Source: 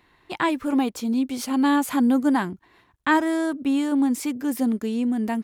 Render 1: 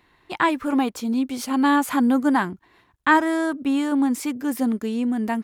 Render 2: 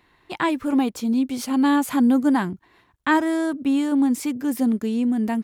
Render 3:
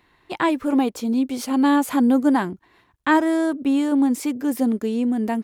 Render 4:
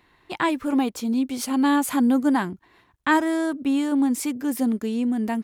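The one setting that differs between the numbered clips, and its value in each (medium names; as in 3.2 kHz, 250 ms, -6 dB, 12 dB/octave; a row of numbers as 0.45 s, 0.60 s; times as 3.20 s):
dynamic bell, frequency: 1.3 kHz, 130 Hz, 480 Hz, 9.8 kHz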